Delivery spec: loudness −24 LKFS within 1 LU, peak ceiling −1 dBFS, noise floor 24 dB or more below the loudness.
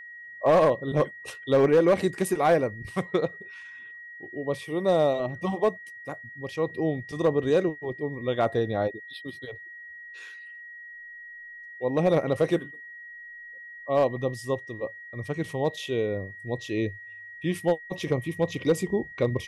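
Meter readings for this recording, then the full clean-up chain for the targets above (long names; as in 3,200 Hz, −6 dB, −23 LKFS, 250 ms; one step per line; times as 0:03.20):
share of clipped samples 0.4%; peaks flattened at −14.0 dBFS; interfering tone 1,900 Hz; level of the tone −41 dBFS; integrated loudness −26.5 LKFS; sample peak −14.0 dBFS; target loudness −24.0 LKFS
→ clipped peaks rebuilt −14 dBFS
notch filter 1,900 Hz, Q 30
level +2.5 dB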